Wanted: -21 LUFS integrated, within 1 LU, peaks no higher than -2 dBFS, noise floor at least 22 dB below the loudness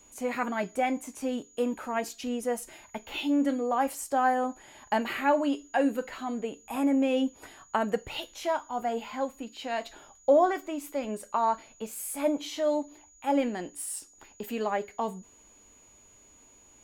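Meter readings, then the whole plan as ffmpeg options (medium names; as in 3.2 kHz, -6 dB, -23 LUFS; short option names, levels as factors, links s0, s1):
steady tone 6.8 kHz; tone level -56 dBFS; loudness -30.0 LUFS; peak level -12.0 dBFS; loudness target -21.0 LUFS
-> -af "bandreject=f=6800:w=30"
-af "volume=2.82"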